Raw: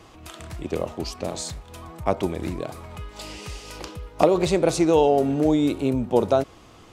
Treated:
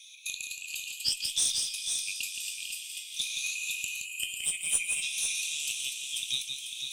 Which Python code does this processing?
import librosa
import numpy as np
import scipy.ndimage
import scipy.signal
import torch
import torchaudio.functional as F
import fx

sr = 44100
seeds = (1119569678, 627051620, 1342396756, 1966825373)

p1 = fx.spec_ripple(x, sr, per_octave=1.4, drift_hz=0.63, depth_db=18)
p2 = scipy.signal.sosfilt(scipy.signal.cheby1(6, 6, 2400.0, 'highpass', fs=sr, output='sos'), p1)
p3 = p2 + fx.echo_diffused(p2, sr, ms=530, feedback_pct=45, wet_db=-8, dry=0)
p4 = fx.spec_box(p3, sr, start_s=3.55, length_s=1.47, low_hz=3200.0, high_hz=6900.0, gain_db=-19)
p5 = fx.doubler(p4, sr, ms=21.0, db=-10.5)
p6 = fx.tube_stage(p5, sr, drive_db=22.0, bias=0.25)
p7 = fx.echo_multitap(p6, sr, ms=(171, 498), db=(-6.0, -7.0))
y = p7 * 10.0 ** (7.5 / 20.0)